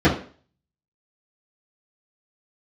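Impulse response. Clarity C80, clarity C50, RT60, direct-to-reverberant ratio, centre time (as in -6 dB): 13.5 dB, 7.5 dB, 0.45 s, -11.0 dB, 25 ms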